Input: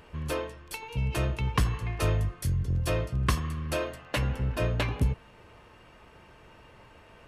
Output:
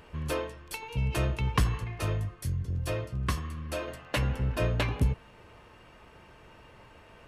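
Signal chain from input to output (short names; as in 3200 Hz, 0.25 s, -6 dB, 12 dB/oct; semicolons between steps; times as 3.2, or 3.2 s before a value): 1.84–3.88 flange 1.7 Hz, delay 8.8 ms, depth 2.2 ms, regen -51%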